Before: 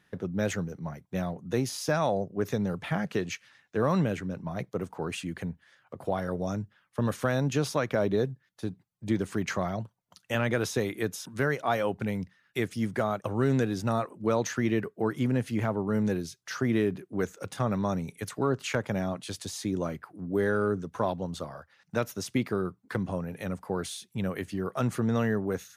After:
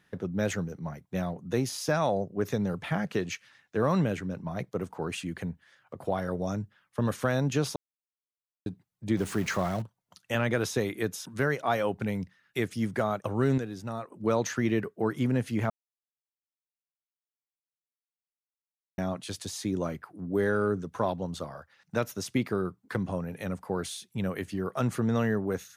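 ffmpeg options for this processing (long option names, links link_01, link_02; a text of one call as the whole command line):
ffmpeg -i in.wav -filter_complex "[0:a]asettb=1/sr,asplit=3[link_01][link_02][link_03];[link_01]atrim=end=9.174[link_04];[link_02]atrim=start=9.17:end=9.82,asetpts=PTS-STARTPTS,afade=type=in:duration=0.004:curve=qsin,afade=type=out:start_time=0.646:duration=0.004:curve=qsin,aeval=exprs='val(0)+0.5*0.0133*sgn(val(0))':channel_layout=same[link_05];[link_03]atrim=start=9.816[link_06];[link_04][link_05]acrossfade=duration=0.004:curve1=hsin:curve2=qsin[link_07];[link_07][link_06]acrossfade=duration=0.004:curve1=qsin:curve2=hsin,asplit=7[link_08][link_09][link_10][link_11][link_12][link_13][link_14];[link_08]atrim=end=7.76,asetpts=PTS-STARTPTS,afade=type=out:start_time=7.756:duration=0.004:curve=hsin[link_15];[link_09]atrim=start=7.76:end=8.66,asetpts=PTS-STARTPTS,volume=0[link_16];[link_10]atrim=start=8.66:end=13.582,asetpts=PTS-STARTPTS,afade=type=in:duration=0.004:curve=hsin[link_17];[link_11]atrim=start=13.578:end=14.122,asetpts=PTS-STARTPTS,volume=-8dB[link_18];[link_12]atrim=start=14.118:end=15.7,asetpts=PTS-STARTPTS,afade=type=out:start_time=1.578:duration=0.004:curve=hsin[link_19];[link_13]atrim=start=15.7:end=18.98,asetpts=PTS-STARTPTS,volume=0[link_20];[link_14]atrim=start=18.98,asetpts=PTS-STARTPTS,afade=type=in:duration=0.004:curve=hsin[link_21];[link_15][link_16][link_17]concat=n=3:v=0:a=1[link_22];[link_22][link_18]acrossfade=duration=0.004:curve1=hsin:curve2=hsin[link_23];[link_19][link_20][link_21]concat=n=3:v=0:a=1[link_24];[link_23][link_24]acrossfade=duration=0.004:curve1=hsin:curve2=hsin" out.wav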